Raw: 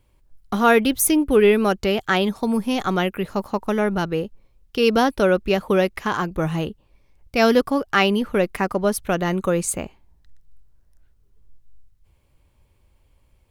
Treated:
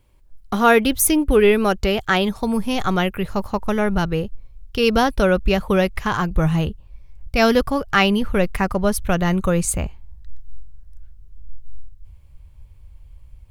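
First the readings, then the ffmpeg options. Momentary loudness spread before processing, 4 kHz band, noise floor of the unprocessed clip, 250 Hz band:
10 LU, +2.0 dB, −62 dBFS, +1.5 dB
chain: -af "asubboost=boost=6.5:cutoff=110,volume=2dB"

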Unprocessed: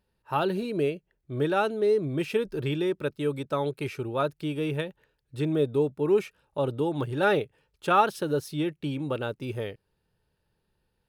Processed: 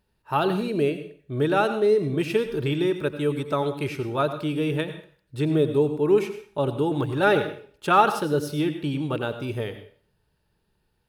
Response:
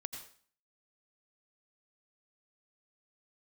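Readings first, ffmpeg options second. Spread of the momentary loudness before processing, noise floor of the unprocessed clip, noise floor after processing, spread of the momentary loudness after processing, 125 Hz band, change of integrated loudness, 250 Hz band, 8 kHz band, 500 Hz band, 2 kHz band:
10 LU, −77 dBFS, −72 dBFS, 11 LU, +4.0 dB, +3.5 dB, +4.5 dB, can't be measured, +3.5 dB, +4.0 dB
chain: -filter_complex "[0:a]bandreject=frequency=520:width=12,asplit=2[link_01][link_02];[1:a]atrim=start_sample=2205[link_03];[link_02][link_03]afir=irnorm=-1:irlink=0,volume=5dB[link_04];[link_01][link_04]amix=inputs=2:normalize=0,volume=-3.5dB"

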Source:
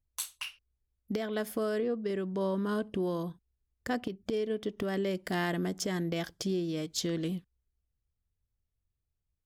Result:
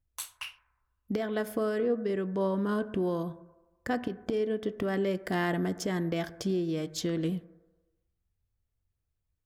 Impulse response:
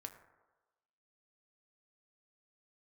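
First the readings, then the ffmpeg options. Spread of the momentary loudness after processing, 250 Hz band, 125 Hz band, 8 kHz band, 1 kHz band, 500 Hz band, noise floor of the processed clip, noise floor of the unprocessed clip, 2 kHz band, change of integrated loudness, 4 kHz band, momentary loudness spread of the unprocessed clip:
10 LU, +2.0 dB, +2.0 dB, −2.5 dB, +2.5 dB, +2.5 dB, −81 dBFS, −84 dBFS, +1.5 dB, +2.0 dB, −2.0 dB, 6 LU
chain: -filter_complex "[0:a]asplit=2[link_01][link_02];[1:a]atrim=start_sample=2205,lowpass=3000[link_03];[link_02][link_03]afir=irnorm=-1:irlink=0,volume=2dB[link_04];[link_01][link_04]amix=inputs=2:normalize=0,volume=-2dB"

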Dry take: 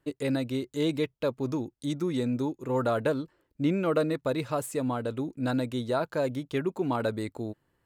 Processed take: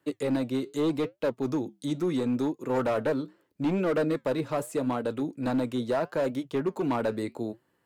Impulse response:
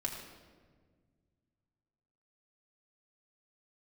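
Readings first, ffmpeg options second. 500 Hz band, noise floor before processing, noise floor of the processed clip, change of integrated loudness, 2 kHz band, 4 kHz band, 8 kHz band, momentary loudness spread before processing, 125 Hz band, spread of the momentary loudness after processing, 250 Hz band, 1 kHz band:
+1.0 dB, −77 dBFS, −73 dBFS, +0.5 dB, −0.5 dB, −2.5 dB, −2.5 dB, 6 LU, −2.5 dB, 5 LU, +1.0 dB, +0.5 dB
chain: -filter_complex "[0:a]highpass=150,acrossover=split=320|1200[link_01][link_02][link_03];[link_03]alimiter=level_in=11dB:limit=-24dB:level=0:latency=1:release=192,volume=-11dB[link_04];[link_01][link_02][link_04]amix=inputs=3:normalize=0,asoftclip=type=hard:threshold=-24.5dB,flanger=delay=3.2:depth=5.8:regen=-80:speed=0.78:shape=triangular,volume=7dB"

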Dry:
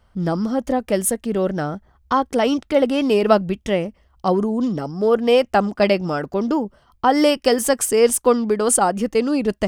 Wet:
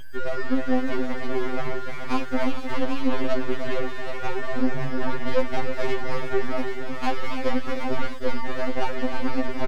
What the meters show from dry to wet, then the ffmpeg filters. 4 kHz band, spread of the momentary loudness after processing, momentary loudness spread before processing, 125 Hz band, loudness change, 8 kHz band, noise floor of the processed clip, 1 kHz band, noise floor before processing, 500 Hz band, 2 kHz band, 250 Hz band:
−9.0 dB, 5 LU, 8 LU, −6.5 dB, −9.5 dB, −25.0 dB, −24 dBFS, −8.5 dB, −59 dBFS, −10.5 dB, −2.5 dB, −8.0 dB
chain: -filter_complex "[0:a]acrossover=split=2700[link_01][link_02];[link_02]acompressor=threshold=-39dB:ratio=4:attack=1:release=60[link_03];[link_01][link_03]amix=inputs=2:normalize=0,aresample=11025,asoftclip=type=hard:threshold=-14.5dB,aresample=44100,acompressor=threshold=-23dB:ratio=6,aeval=exprs='0.178*(cos(1*acos(clip(val(0)/0.178,-1,1)))-cos(1*PI/2))+0.0282*(cos(4*acos(clip(val(0)/0.178,-1,1)))-cos(4*PI/2))':channel_layout=same,lowshelf=frequency=100:gain=6,aecho=1:1:306|317|321|433|775:0.398|0.1|0.133|0.282|0.355,aeval=exprs='val(0)+0.0251*sin(2*PI*1600*n/s)':channel_layout=same,aeval=exprs='abs(val(0))':channel_layout=same,afftfilt=real='re*2.45*eq(mod(b,6),0)':imag='im*2.45*eq(mod(b,6),0)':win_size=2048:overlap=0.75"

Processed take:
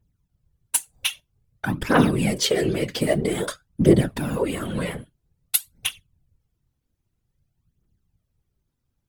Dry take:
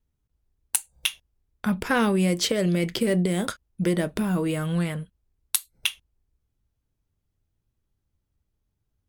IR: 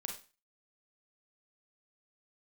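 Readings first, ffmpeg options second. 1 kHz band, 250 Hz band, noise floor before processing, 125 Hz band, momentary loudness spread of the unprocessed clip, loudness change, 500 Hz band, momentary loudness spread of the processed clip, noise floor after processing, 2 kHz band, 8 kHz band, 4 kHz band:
+2.5 dB, +1.5 dB, −79 dBFS, +2.0 dB, 7 LU, +2.0 dB, +4.0 dB, 11 LU, −77 dBFS, +1.0 dB, +2.5 dB, +1.5 dB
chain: -filter_complex "[0:a]asplit=2[link_01][link_02];[1:a]atrim=start_sample=2205,asetrate=83790,aresample=44100[link_03];[link_02][link_03]afir=irnorm=-1:irlink=0,volume=-7dB[link_04];[link_01][link_04]amix=inputs=2:normalize=0,aphaser=in_gain=1:out_gain=1:delay=4.2:decay=0.65:speed=0.51:type=triangular,afftfilt=real='hypot(re,im)*cos(2*PI*random(0))':imag='hypot(re,im)*sin(2*PI*random(1))':win_size=512:overlap=0.75,volume=4.5dB"

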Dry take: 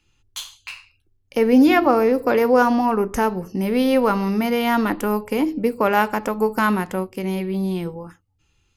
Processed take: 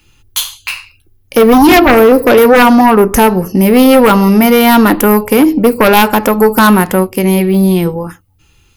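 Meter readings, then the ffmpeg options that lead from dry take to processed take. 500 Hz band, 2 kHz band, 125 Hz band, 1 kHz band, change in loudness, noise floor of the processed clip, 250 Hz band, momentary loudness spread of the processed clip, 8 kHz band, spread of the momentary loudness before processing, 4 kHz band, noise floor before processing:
+11.5 dB, +12.0 dB, +14.0 dB, +11.5 dB, +11.5 dB, −50 dBFS, +11.5 dB, 12 LU, +18.5 dB, 17 LU, +15.0 dB, −65 dBFS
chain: -af "aexciter=amount=3.1:drive=5.1:freq=9800,aeval=exprs='0.75*sin(PI/2*3.16*val(0)/0.75)':channel_layout=same,volume=1dB"

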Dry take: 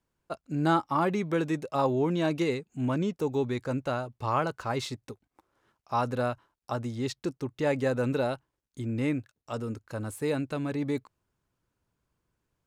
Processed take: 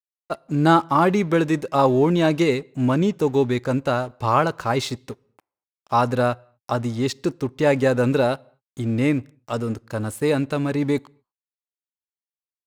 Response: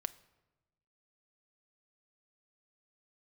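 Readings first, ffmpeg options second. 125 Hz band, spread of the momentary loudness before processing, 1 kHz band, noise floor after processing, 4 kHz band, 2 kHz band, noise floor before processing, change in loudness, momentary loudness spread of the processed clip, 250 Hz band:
+8.5 dB, 11 LU, +9.0 dB, below −85 dBFS, +9.0 dB, +9.0 dB, −85 dBFS, +9.0 dB, 11 LU, +8.5 dB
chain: -filter_complex "[0:a]aeval=exprs='sgn(val(0))*max(abs(val(0))-0.002,0)':channel_layout=same,asplit=2[link_01][link_02];[1:a]atrim=start_sample=2205,afade=type=out:start_time=0.3:duration=0.01,atrim=end_sample=13671[link_03];[link_02][link_03]afir=irnorm=-1:irlink=0,volume=-6dB[link_04];[link_01][link_04]amix=inputs=2:normalize=0,volume=6dB"

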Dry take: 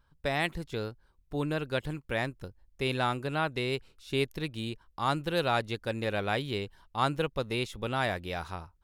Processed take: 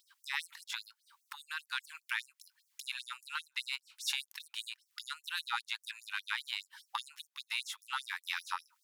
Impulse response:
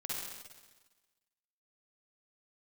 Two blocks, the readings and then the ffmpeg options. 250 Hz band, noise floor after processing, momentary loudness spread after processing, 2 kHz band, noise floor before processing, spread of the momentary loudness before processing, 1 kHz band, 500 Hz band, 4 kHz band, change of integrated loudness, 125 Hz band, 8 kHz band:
below −40 dB, −83 dBFS, 9 LU, −3.5 dB, −68 dBFS, 8 LU, −11.0 dB, below −40 dB, −1.0 dB, −7.0 dB, below −40 dB, +4.0 dB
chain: -af "acompressor=threshold=-43dB:ratio=12,aeval=exprs='0.0335*(cos(1*acos(clip(val(0)/0.0335,-1,1)))-cos(1*PI/2))+0.00119*(cos(6*acos(clip(val(0)/0.0335,-1,1)))-cos(6*PI/2))':channel_layout=same,afftfilt=real='re*gte(b*sr/1024,800*pow(5600/800,0.5+0.5*sin(2*PI*5*pts/sr)))':imag='im*gte(b*sr/1024,800*pow(5600/800,0.5+0.5*sin(2*PI*5*pts/sr)))':win_size=1024:overlap=0.75,volume=16.5dB"

